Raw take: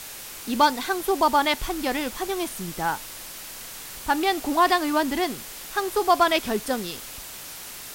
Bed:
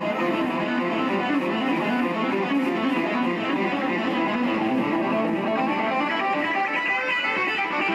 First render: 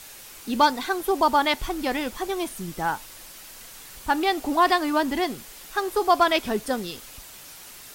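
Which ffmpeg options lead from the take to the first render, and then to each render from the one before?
-af "afftdn=nr=6:nf=-39"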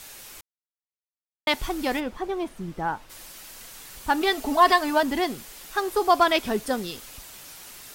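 -filter_complex "[0:a]asplit=3[s0][s1][s2];[s0]afade=t=out:st=1.99:d=0.02[s3];[s1]lowpass=f=1300:p=1,afade=t=in:st=1.99:d=0.02,afade=t=out:st=3.09:d=0.02[s4];[s2]afade=t=in:st=3.09:d=0.02[s5];[s3][s4][s5]amix=inputs=3:normalize=0,asettb=1/sr,asplit=3[s6][s7][s8];[s6]atrim=end=4.214[s9];[s7]atrim=start=4.21:end=5.03,asetpts=PTS-STARTPTS,afade=t=in:d=0.004:c=qsin,afade=t=out:st=0.816:d=0.004:c=qsin,aecho=1:1:4.6:0.66,atrim=end_sample=36162[s10];[s8]atrim=start=5.026[s11];[s9][s10]acrossfade=d=0.004:c1=hsin:c2=qsin[s12];[s12][s11]acrossfade=d=0.004:c1=qsin:c2=hsin,asplit=3[s13][s14][s15];[s13]atrim=end=0.41,asetpts=PTS-STARTPTS,afade=t=out:st=0.406:d=0.004:c=hsin[s16];[s14]atrim=start=0.41:end=1.47,asetpts=PTS-STARTPTS,volume=0[s17];[s15]atrim=start=1.47,asetpts=PTS-STARTPTS,afade=t=in:d=0.004:c=hsin[s18];[s16][s17][s18]concat=n=3:v=0:a=1"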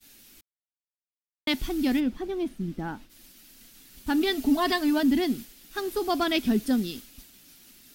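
-af "agate=range=0.0224:threshold=0.0141:ratio=3:detection=peak,equalizer=f=125:t=o:w=1:g=-4,equalizer=f=250:t=o:w=1:g=11,equalizer=f=500:t=o:w=1:g=-8,equalizer=f=1000:t=o:w=1:g=-11,equalizer=f=2000:t=o:w=1:g=-3,equalizer=f=8000:t=o:w=1:g=-5"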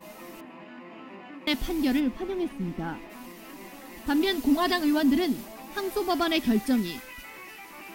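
-filter_complex "[1:a]volume=0.0944[s0];[0:a][s0]amix=inputs=2:normalize=0"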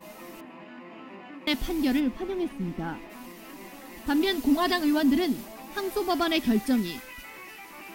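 -af anull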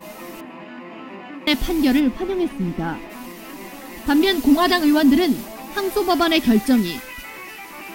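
-af "volume=2.51"

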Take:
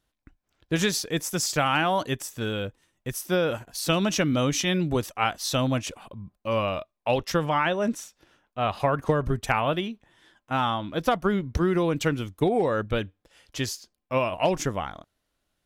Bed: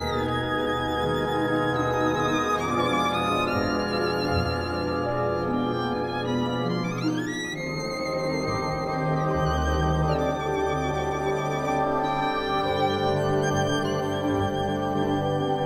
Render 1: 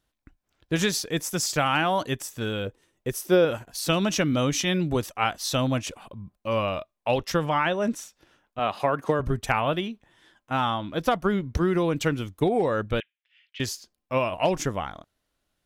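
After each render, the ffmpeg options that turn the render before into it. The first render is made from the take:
-filter_complex "[0:a]asettb=1/sr,asplit=3[s0][s1][s2];[s0]atrim=end=2.664[s3];[s1]atrim=start=2.66:end=3.45,asetpts=PTS-STARTPTS,afade=t=in:d=0.004:c=qsin,afade=t=out:st=0.786:d=0.004:c=qsin,equalizer=f=420:t=o:w=0.77:g=9[s4];[s2]atrim=start=3.446[s5];[s3][s4]acrossfade=d=0.004:c1=hsin:c2=qsin[s6];[s6][s5]acrossfade=d=0.004:c1=qsin:c2=hsin,asettb=1/sr,asplit=3[s7][s8][s9];[s7]atrim=end=8.594[s10];[s8]atrim=start=8.59:end=9.2,asetpts=PTS-STARTPTS,afade=t=in:d=0.004:c=qsin,afade=t=out:st=0.606:d=0.004:c=qsin,highpass=180[s11];[s9]atrim=start=9.196[s12];[s10][s11]acrossfade=d=0.004:c1=hsin:c2=qsin[s13];[s13][s12]acrossfade=d=0.004:c1=qsin:c2=hsin,asettb=1/sr,asplit=3[s14][s15][s16];[s14]atrim=end=13.004[s17];[s15]atrim=start=13:end=13.6,asetpts=PTS-STARTPTS,afade=t=in:d=0.004:c=qsin,afade=t=out:st=0.596:d=0.004:c=qsin,asuperpass=centerf=2500:order=4:qfactor=1.9[s18];[s16]atrim=start=13.596[s19];[s17][s18]acrossfade=d=0.004:c1=hsin:c2=qsin[s20];[s20][s19]acrossfade=d=0.004:c1=qsin:c2=hsin"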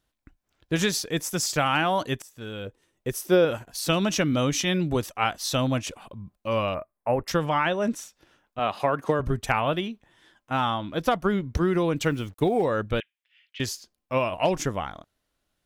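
-filter_complex "[0:a]asettb=1/sr,asplit=3[s0][s1][s2];[s0]atrim=end=6.744[s3];[s1]atrim=start=6.74:end=7.28,asetpts=PTS-STARTPTS,afade=t=in:d=0.004:c=qsin,afade=t=out:st=0.536:d=0.004:c=qsin,asuperstop=centerf=4400:order=8:qfactor=0.68[s4];[s2]atrim=start=7.276[s5];[s3][s4]acrossfade=d=0.004:c1=hsin:c2=qsin[s6];[s6][s5]acrossfade=d=0.004:c1=qsin:c2=hsin,asettb=1/sr,asplit=3[s7][s8][s9];[s7]atrim=end=12.044[s10];[s8]atrim=start=12.04:end=12.65,asetpts=PTS-STARTPTS,afade=t=in:d=0.004:c=qsin,afade=t=out:st=0.606:d=0.004:c=qsin,acrusher=bits=8:mix=0:aa=0.5[s11];[s9]atrim=start=12.646[s12];[s10][s11]acrossfade=d=0.004:c1=hsin:c2=qsin[s13];[s13][s12]acrossfade=d=0.004:c1=qsin:c2=hsin,asplit=2[s14][s15];[s14]atrim=end=2.22,asetpts=PTS-STARTPTS,afade=t=out:st=2.216:d=0.004:c=hsin:silence=0.188365[s16];[s15]atrim=start=2.22,asetpts=PTS-STARTPTS,afade=t=in:d=0.89:silence=0.188365[s17];[s16][s17]concat=n=2:v=0:a=1"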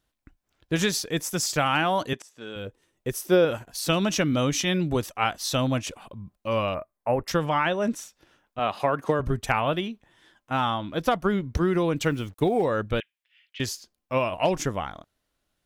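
-filter_complex "[0:a]asettb=1/sr,asplit=3[s0][s1][s2];[s0]atrim=end=2.134[s3];[s1]atrim=start=2.13:end=2.56,asetpts=PTS-STARTPTS,afade=t=in:d=0.004:c=qsin,afade=t=out:st=0.426:d=0.004:c=qsin,highpass=230,lowpass=7800[s4];[s2]atrim=start=2.556[s5];[s3][s4]acrossfade=d=0.004:c1=hsin:c2=qsin[s6];[s6][s5]acrossfade=d=0.004:c1=qsin:c2=hsin"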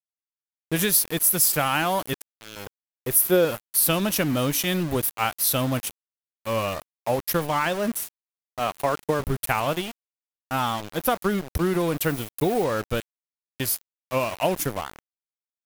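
-af "aexciter=amount=5.9:drive=9.1:freq=9400,aeval=exprs='val(0)*gte(abs(val(0)),0.0316)':c=same"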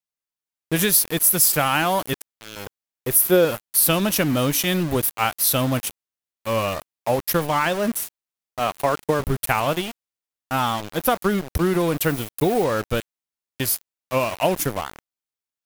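-af "volume=1.41,alimiter=limit=0.708:level=0:latency=1"

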